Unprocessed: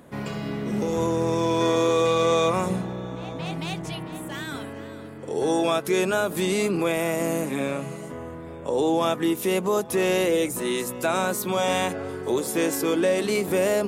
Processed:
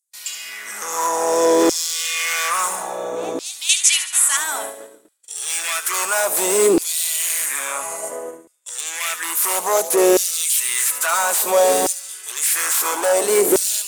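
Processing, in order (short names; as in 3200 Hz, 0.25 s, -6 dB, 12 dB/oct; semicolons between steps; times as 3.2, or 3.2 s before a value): resonant high shelf 5500 Hz +12.5 dB, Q 1.5; in parallel at -7.5 dB: sine folder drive 16 dB, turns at -3.5 dBFS; 3.69–4.37 on the sum: weighting filter ITU-R 468; gate -20 dBFS, range -35 dB; LFO high-pass saw down 0.59 Hz 340–5200 Hz; on a send: thin delay 72 ms, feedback 51%, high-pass 3100 Hz, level -9.5 dB; on the sum: gain -6.5 dB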